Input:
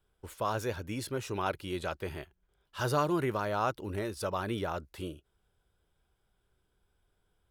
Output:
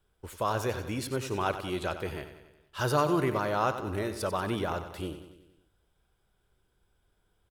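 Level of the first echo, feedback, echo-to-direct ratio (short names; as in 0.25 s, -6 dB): -11.0 dB, 57%, -9.5 dB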